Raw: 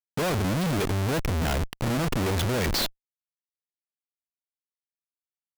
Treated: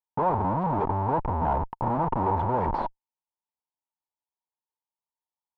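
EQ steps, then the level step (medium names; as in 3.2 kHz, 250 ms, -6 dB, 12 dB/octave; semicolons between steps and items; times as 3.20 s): resonant low-pass 920 Hz, resonance Q 9.7; -3.5 dB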